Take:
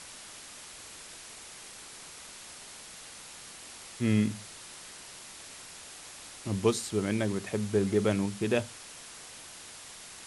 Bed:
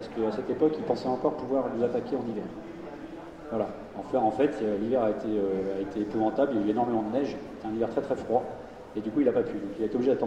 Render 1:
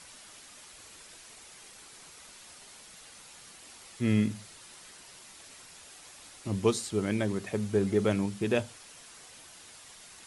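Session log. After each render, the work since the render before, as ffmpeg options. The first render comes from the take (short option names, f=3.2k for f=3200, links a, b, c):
-af "afftdn=nr=6:nf=-48"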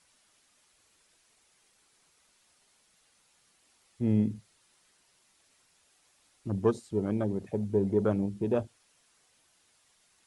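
-af "afwtdn=0.02"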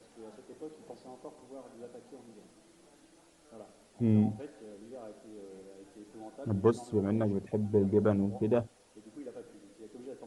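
-filter_complex "[1:a]volume=-21dB[a];[0:a][a]amix=inputs=2:normalize=0"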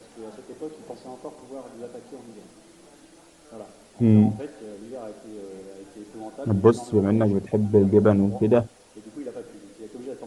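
-af "volume=9.5dB"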